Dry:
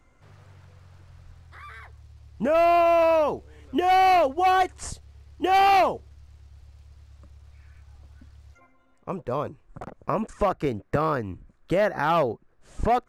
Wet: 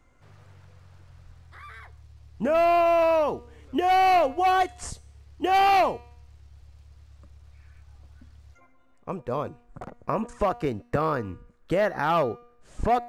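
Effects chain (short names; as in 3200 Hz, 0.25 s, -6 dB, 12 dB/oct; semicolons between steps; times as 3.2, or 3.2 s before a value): resonator 240 Hz, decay 0.68 s, harmonics all, mix 50%; gain +4.5 dB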